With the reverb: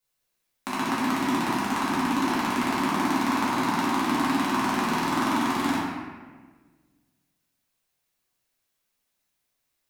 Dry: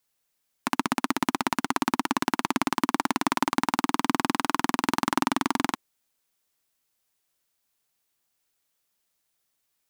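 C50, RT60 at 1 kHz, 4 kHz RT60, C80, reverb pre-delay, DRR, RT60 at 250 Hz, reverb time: -1.0 dB, 1.3 s, 0.95 s, 1.0 dB, 4 ms, -10.0 dB, 1.7 s, 1.4 s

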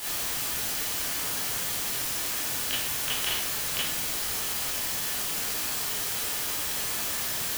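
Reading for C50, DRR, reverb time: 2.0 dB, -8.0 dB, 0.65 s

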